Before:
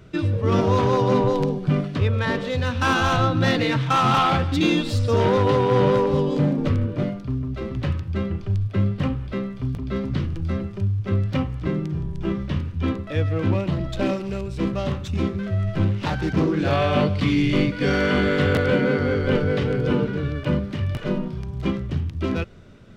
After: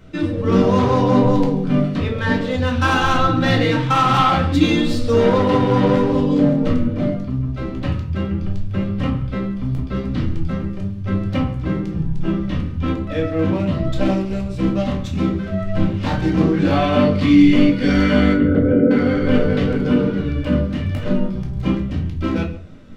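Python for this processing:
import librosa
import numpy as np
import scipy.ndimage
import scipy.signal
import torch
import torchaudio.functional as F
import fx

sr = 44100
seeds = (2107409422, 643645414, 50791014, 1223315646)

p1 = fx.envelope_sharpen(x, sr, power=2.0, at=(18.33, 18.91))
p2 = p1 + fx.echo_single(p1, sr, ms=136, db=-20.0, dry=0)
p3 = fx.room_shoebox(p2, sr, seeds[0], volume_m3=270.0, walls='furnished', distance_m=2.1)
y = F.gain(torch.from_numpy(p3), -1.0).numpy()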